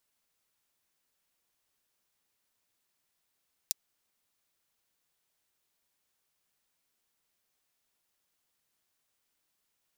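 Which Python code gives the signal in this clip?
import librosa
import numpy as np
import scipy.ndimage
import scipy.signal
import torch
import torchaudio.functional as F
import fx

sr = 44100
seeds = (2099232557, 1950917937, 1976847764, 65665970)

y = fx.drum_hat(sr, length_s=0.24, from_hz=4800.0, decay_s=0.02)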